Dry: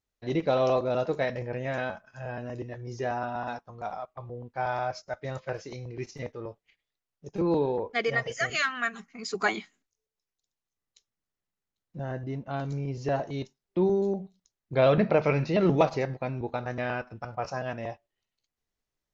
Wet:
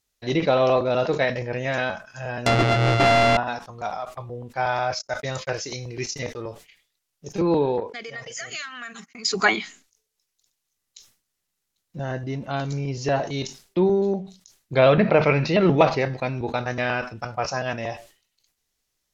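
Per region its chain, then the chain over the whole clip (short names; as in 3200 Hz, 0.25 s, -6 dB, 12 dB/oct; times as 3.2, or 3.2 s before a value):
2.46–3.37 sample sorter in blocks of 64 samples + LPF 4600 Hz + sample leveller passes 5
4.99–6.42 gate -51 dBFS, range -49 dB + high shelf 5500 Hz +7 dB
7.8–9.25 HPF 110 Hz + compressor 4:1, threshold -43 dBFS + gate -54 dBFS, range -46 dB
whole clip: high shelf 2500 Hz +12 dB; treble ducked by the level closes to 2900 Hz, closed at -20.5 dBFS; sustainer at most 140 dB/s; gain +4.5 dB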